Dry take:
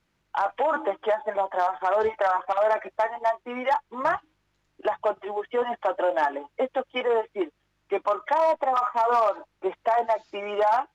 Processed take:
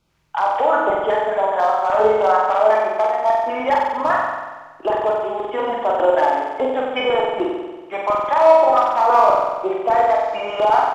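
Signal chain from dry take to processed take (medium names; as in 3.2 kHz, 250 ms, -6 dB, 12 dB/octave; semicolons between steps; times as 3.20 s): LFO notch square 5 Hz 370–1800 Hz; doubling 28 ms -13 dB; flutter echo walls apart 8 m, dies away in 1.3 s; trim +4.5 dB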